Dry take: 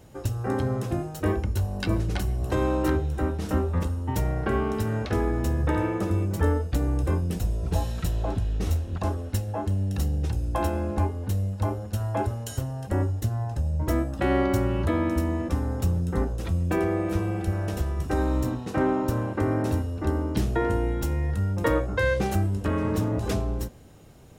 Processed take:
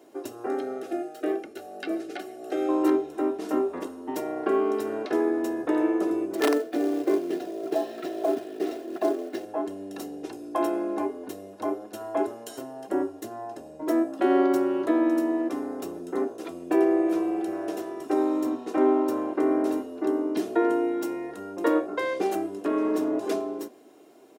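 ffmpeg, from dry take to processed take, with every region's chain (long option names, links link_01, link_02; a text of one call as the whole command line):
ffmpeg -i in.wav -filter_complex "[0:a]asettb=1/sr,asplit=3[link_01][link_02][link_03];[link_01]atrim=end=0.474[link_04];[link_02]atrim=start=0.47:end=2.69,asetpts=PTS-STARTPTS,afade=type=in:duration=0.004:curve=qsin,afade=type=out:start_time=2.216:duration=0.004:curve=qsin,lowshelf=frequency=300:gain=-10.5,acrossover=split=4000[link_05][link_06];[link_06]acompressor=threshold=-47dB:ratio=4:attack=1:release=60[link_07];[link_05][link_07]amix=inputs=2:normalize=0,asuperstop=centerf=1000:order=12:qfactor=4.2[link_08];[link_03]atrim=start=2.686[link_09];[link_04][link_08]acrossfade=duration=0.004:curve1=hsin:curve2=qsin[link_10];[link_10][link_09]acrossfade=duration=0.004:curve1=qsin:curve2=hsin,asettb=1/sr,asplit=3[link_11][link_12][link_13];[link_11]atrim=end=6.354[link_14];[link_12]atrim=start=6.35:end=9.45,asetpts=PTS-STARTPTS,afade=type=in:duration=0.004:curve=qsin,afade=type=out:start_time=3.096:duration=0.004:curve=qsin,highpass=140,equalizer=frequency=360:width_type=q:width=4:gain=8,equalizer=frequency=670:width_type=q:width=4:gain=7,equalizer=frequency=970:width_type=q:width=4:gain=-7,equalizer=frequency=1800:width_type=q:width=4:gain=5,lowpass=frequency=5100:width=0.5412,lowpass=frequency=5100:width=1.3066,aeval=exprs='(mod(5.62*val(0)+1,2)-1)/5.62':channel_layout=same,acrusher=bits=4:mode=log:mix=0:aa=0.000001[link_15];[link_13]atrim=start=9.446[link_16];[link_14][link_15]acrossfade=duration=0.004:curve1=hsin:curve2=qsin[link_17];[link_17][link_16]acrossfade=duration=0.004:curve1=qsin:curve2=hsin,highpass=frequency=300:width=0.5412,highpass=frequency=300:width=1.3066,tiltshelf=frequency=800:gain=5,aecho=1:1:2.9:0.51" out.wav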